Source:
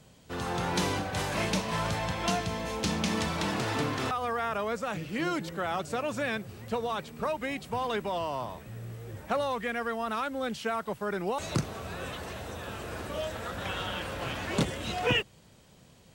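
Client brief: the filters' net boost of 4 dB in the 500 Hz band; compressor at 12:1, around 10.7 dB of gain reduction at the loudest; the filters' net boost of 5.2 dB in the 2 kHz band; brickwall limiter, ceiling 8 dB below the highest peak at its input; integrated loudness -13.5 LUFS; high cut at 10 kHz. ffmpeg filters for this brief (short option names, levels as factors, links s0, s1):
-af "lowpass=10000,equalizer=f=500:t=o:g=4.5,equalizer=f=2000:t=o:g=6.5,acompressor=threshold=0.0355:ratio=12,volume=11.9,alimiter=limit=0.631:level=0:latency=1"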